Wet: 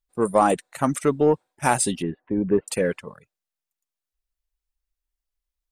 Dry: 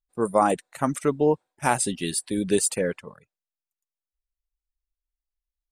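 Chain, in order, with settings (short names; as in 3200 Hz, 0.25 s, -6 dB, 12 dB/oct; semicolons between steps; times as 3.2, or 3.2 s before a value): 2.02–2.68 Gaussian blur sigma 5.8 samples; in parallel at -6.5 dB: soft clip -19 dBFS, distortion -10 dB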